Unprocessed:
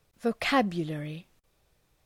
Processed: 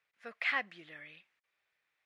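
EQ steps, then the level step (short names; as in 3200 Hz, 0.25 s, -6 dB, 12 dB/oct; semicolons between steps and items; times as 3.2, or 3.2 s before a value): band-pass 2000 Hz, Q 2.5; 0.0 dB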